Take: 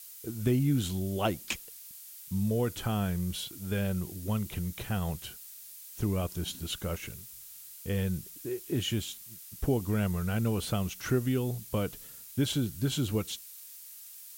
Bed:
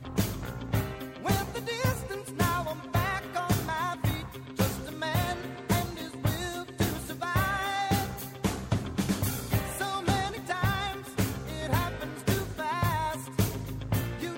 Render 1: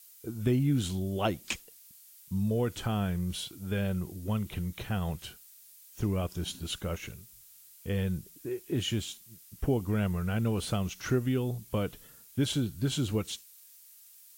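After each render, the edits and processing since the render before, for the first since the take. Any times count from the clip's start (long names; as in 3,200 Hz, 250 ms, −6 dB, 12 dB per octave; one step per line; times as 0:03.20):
noise reduction from a noise print 7 dB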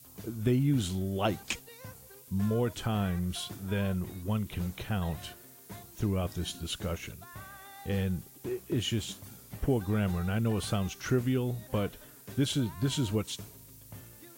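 mix in bed −19.5 dB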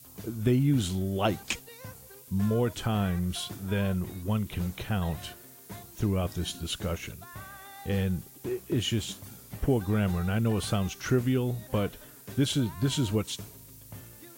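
level +2.5 dB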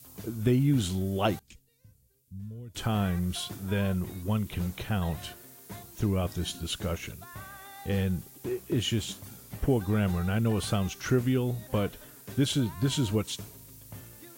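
0:01.39–0:02.75: guitar amp tone stack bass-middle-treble 10-0-1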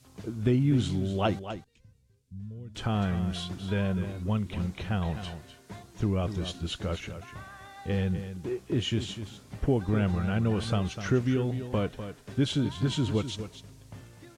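high-frequency loss of the air 78 metres
on a send: single-tap delay 250 ms −10.5 dB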